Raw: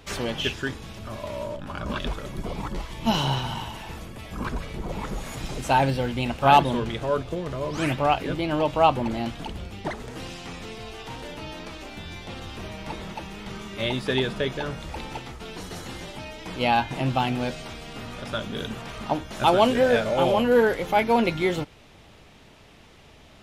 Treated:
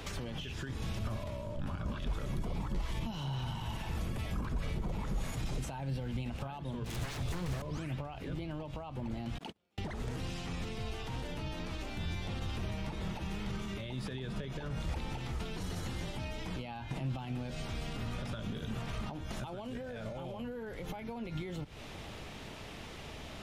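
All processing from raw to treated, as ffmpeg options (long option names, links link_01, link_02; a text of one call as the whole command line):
ffmpeg -i in.wav -filter_complex "[0:a]asettb=1/sr,asplit=3[link_01][link_02][link_03];[link_01]atrim=end=6.844[link_04];[link_02]atrim=start=6.84:end=7.62,asetpts=PTS-STARTPTS,afade=type=in:duration=0.004:curve=qsin,afade=type=out:start_time=0.776:duration=0.004:curve=qsin,highshelf=frequency=3500:gain=11.5,aeval=exprs='0.0316*(abs(mod(val(0)/0.0316+3,4)-2)-1)':channel_layout=same[link_05];[link_03]atrim=start=7.616[link_06];[link_04][link_05]acrossfade=duration=0.004:curve1=hsin:curve2=qsin[link_07];[link_07][link_06]acrossfade=duration=0.004:curve1=qsin:curve2=hsin,asettb=1/sr,asplit=3[link_08][link_09][link_10];[link_08]atrim=end=9.384[link_11];[link_09]atrim=start=9.38:end=9.78,asetpts=PTS-STARTPTS,afade=type=in:duration=0.004:curve=qsin,afade=type=out:start_time=0.396:duration=0.004:curve=qsin,highpass=230,agate=range=-41dB:threshold=-37dB:ratio=16:release=100:detection=peak[link_12];[link_10]atrim=start=9.776[link_13];[link_11][link_12]acrossfade=duration=0.004:curve1=hsin:curve2=qsin[link_14];[link_14][link_13]acrossfade=duration=0.004:curve1=qsin:curve2=hsin,acompressor=threshold=-31dB:ratio=6,alimiter=level_in=6dB:limit=-24dB:level=0:latency=1:release=48,volume=-6dB,acrossover=split=180[link_15][link_16];[link_16]acompressor=threshold=-48dB:ratio=6[link_17];[link_15][link_17]amix=inputs=2:normalize=0,volume=5.5dB" out.wav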